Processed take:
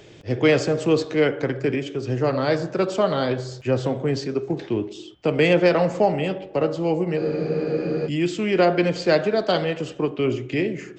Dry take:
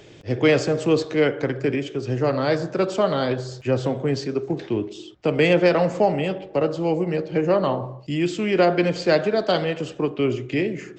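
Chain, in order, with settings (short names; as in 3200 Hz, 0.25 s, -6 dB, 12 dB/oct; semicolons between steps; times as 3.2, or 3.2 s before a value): de-hum 280.9 Hz, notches 12; spectral freeze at 7.19, 0.87 s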